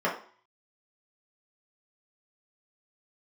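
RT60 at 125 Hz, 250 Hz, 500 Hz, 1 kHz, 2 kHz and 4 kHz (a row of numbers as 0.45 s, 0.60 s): 0.30 s, 0.45 s, 0.45 s, 0.50 s, 0.45 s, 0.45 s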